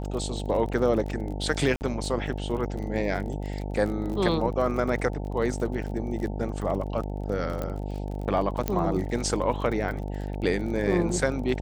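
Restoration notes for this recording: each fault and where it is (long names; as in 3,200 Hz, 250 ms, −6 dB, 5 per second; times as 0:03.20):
mains buzz 50 Hz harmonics 18 −32 dBFS
surface crackle 38 per second −33 dBFS
0:01.76–0:01.81: drop-out 49 ms
0:04.67: drop-out 2.3 ms
0:07.62: click −18 dBFS
0:08.68: click −11 dBFS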